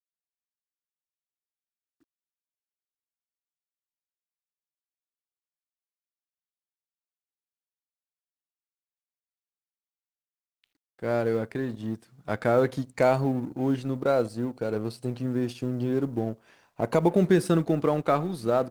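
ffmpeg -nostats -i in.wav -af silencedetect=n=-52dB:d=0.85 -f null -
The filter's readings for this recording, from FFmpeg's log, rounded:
silence_start: 0.00
silence_end: 10.64 | silence_duration: 10.64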